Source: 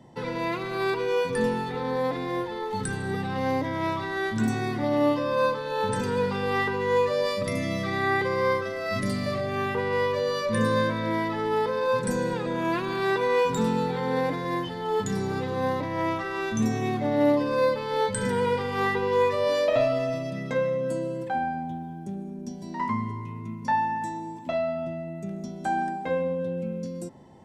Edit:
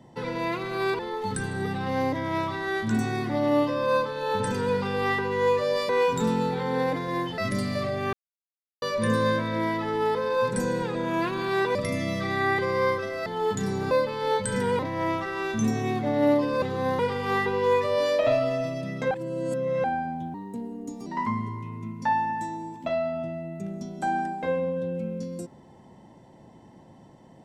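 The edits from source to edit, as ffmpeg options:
-filter_complex "[0:a]asplit=16[s0][s1][s2][s3][s4][s5][s6][s7][s8][s9][s10][s11][s12][s13][s14][s15];[s0]atrim=end=0.992[s16];[s1]atrim=start=2.478:end=7.382[s17];[s2]atrim=start=13.258:end=14.752[s18];[s3]atrim=start=8.888:end=9.64,asetpts=PTS-STARTPTS,afade=t=out:st=0.748:d=0.004:c=hsin[s19];[s4]atrim=start=9.64:end=10.33,asetpts=PTS-STARTPTS,volume=0[s20];[s5]atrim=start=10.33:end=13.262,asetpts=PTS-STARTPTS,afade=t=in:d=0.004:c=hsin[s21];[s6]atrim=start=7.378:end=8.892[s22];[s7]atrim=start=14.748:end=15.402[s23];[s8]atrim=start=17.598:end=18.482[s24];[s9]atrim=start=15.768:end=17.602[s25];[s10]atrim=start=15.398:end=15.772[s26];[s11]atrim=start=18.478:end=20.602[s27];[s12]atrim=start=20.598:end=21.332,asetpts=PTS-STARTPTS,areverse[s28];[s13]atrim=start=21.328:end=21.834[s29];[s14]atrim=start=21.83:end=22.69,asetpts=PTS-STARTPTS,asetrate=52479,aresample=44100[s30];[s15]atrim=start=22.686[s31];[s16][s17]acrossfade=d=0.004:c1=hsin:c2=hsin[s32];[s32][s18]acrossfade=d=0.004:c1=hsin:c2=hsin[s33];[s19][s20][s21]concat=n=3:v=0:a=1[s34];[s33][s34]acrossfade=d=0.004:c1=hsin:c2=hsin[s35];[s35][s22]acrossfade=d=0.004:c1=hsin:c2=hsin[s36];[s36][s23]acrossfade=d=0.004:c1=hsin:c2=hsin[s37];[s37][s24]acrossfade=d=0.004:c1=hsin:c2=hsin[s38];[s38][s25]acrossfade=d=0.004:c1=hsin:c2=hsin[s39];[s39][s26]acrossfade=d=0.004:c1=hsin:c2=hsin[s40];[s40][s27]acrossfade=d=0.004:c1=hsin:c2=hsin[s41];[s41][s28]acrossfade=d=0.004:c1=hsin:c2=hsin[s42];[s42][s29]acrossfade=d=0.004:c1=hsin:c2=hsin[s43];[s43][s30]acrossfade=d=0.004:c1=hsin:c2=hsin[s44];[s44][s31]acrossfade=d=0.004:c1=hsin:c2=hsin"

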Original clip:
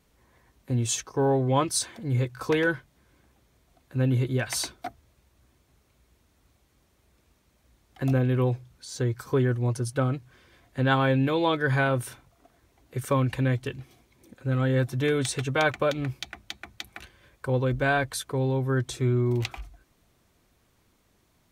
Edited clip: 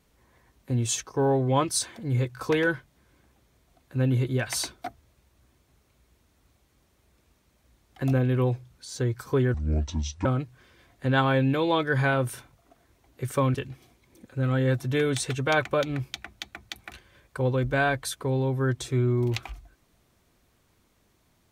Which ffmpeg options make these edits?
-filter_complex "[0:a]asplit=4[s0][s1][s2][s3];[s0]atrim=end=9.544[s4];[s1]atrim=start=9.54:end=9.99,asetpts=PTS-STARTPTS,asetrate=27783,aresample=44100[s5];[s2]atrim=start=9.986:end=13.282[s6];[s3]atrim=start=13.628[s7];[s4][s5]acrossfade=d=0.004:c1=hsin:c2=hsin[s8];[s8][s6]acrossfade=d=0.004:c1=hsin:c2=hsin[s9];[s9][s7]acrossfade=d=0.004:c1=hsin:c2=hsin"

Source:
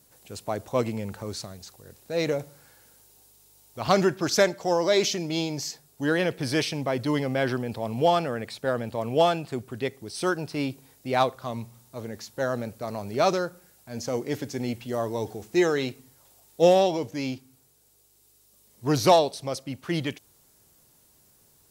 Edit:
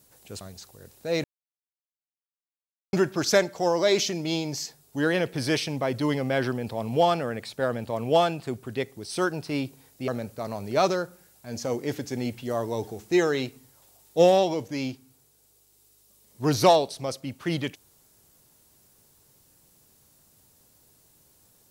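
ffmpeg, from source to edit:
-filter_complex "[0:a]asplit=5[s0][s1][s2][s3][s4];[s0]atrim=end=0.412[s5];[s1]atrim=start=1.458:end=2.29,asetpts=PTS-STARTPTS,afade=t=out:st=0.828:d=0.004:c=hsin[s6];[s2]atrim=start=2.29:end=3.98,asetpts=PTS-STARTPTS,volume=0[s7];[s3]atrim=start=3.98:end=11.132,asetpts=PTS-STARTPTS,afade=t=in:d=0.004:c=hsin[s8];[s4]atrim=start=12.508[s9];[s6][s7][s8]concat=n=3:v=0:a=1[s10];[s5][s10]acrossfade=d=0.004:c1=hsin:c2=hsin[s11];[s11][s9]acrossfade=d=0.004:c1=hsin:c2=hsin"

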